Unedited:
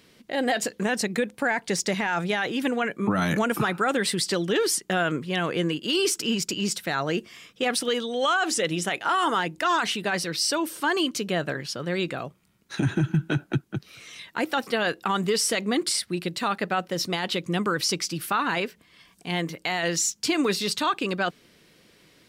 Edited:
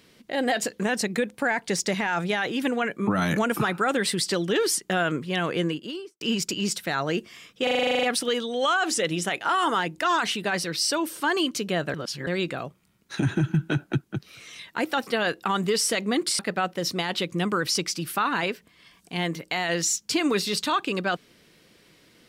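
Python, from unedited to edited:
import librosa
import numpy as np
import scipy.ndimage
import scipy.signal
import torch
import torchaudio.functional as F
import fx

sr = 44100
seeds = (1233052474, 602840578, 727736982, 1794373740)

y = fx.studio_fade_out(x, sr, start_s=5.59, length_s=0.62)
y = fx.edit(y, sr, fx.stutter(start_s=7.63, slice_s=0.04, count=11),
    fx.reverse_span(start_s=11.54, length_s=0.33),
    fx.cut(start_s=15.99, length_s=0.54), tone=tone)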